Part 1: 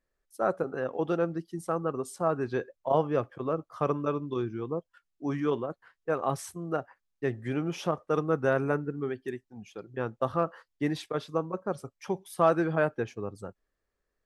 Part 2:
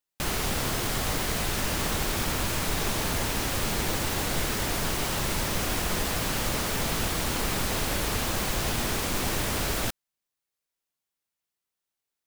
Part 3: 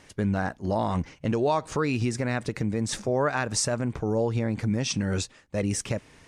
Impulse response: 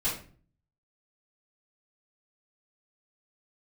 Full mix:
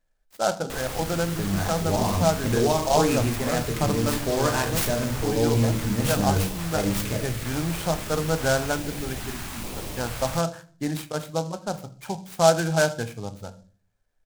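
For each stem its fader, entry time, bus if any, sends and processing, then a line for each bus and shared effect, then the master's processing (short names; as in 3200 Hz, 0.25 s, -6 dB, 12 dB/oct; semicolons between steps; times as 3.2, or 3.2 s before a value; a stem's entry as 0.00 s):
+1.5 dB, 0.00 s, send -15 dB, comb 1.3 ms, depth 60%
-5.0 dB, 0.50 s, no send, stepped notch 2.3 Hz 200–1600 Hz
-8.5 dB, 1.20 s, send -5.5 dB, AGC gain up to 5 dB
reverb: on, RT60 0.45 s, pre-delay 3 ms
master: noise-modulated delay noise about 5100 Hz, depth 0.054 ms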